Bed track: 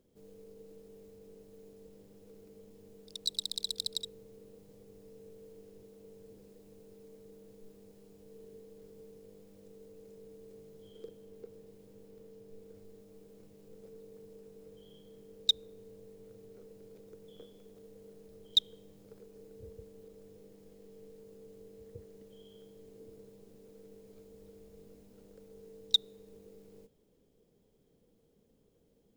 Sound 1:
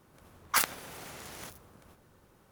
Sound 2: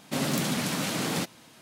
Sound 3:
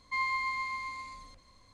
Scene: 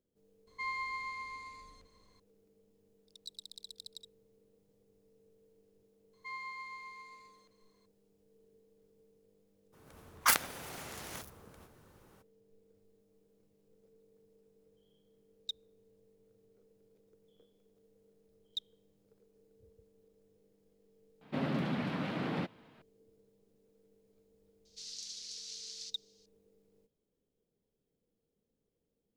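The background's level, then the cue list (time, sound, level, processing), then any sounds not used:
bed track −14 dB
0:00.47: mix in 3 −6.5 dB
0:06.13: mix in 3 −12 dB + high-pass filter 400 Hz
0:09.72: mix in 1, fades 0.02 s
0:21.21: mix in 2 −4.5 dB + high-frequency loss of the air 400 metres
0:24.65: mix in 2 −6 dB + flat-topped band-pass 5,200 Hz, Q 2.2

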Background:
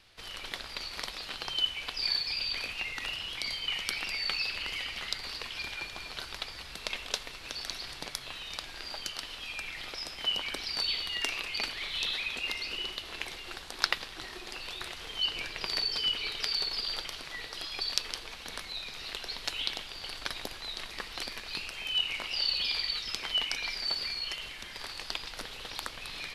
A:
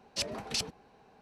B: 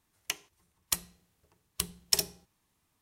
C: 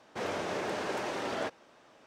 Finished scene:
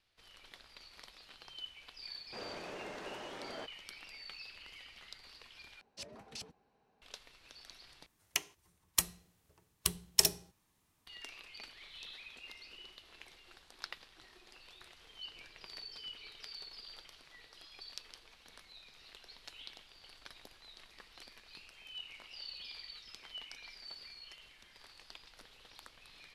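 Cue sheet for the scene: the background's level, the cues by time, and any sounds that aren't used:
background −17 dB
0:02.17: mix in C −11.5 dB
0:05.81: overwrite with A −14 dB
0:08.06: overwrite with B

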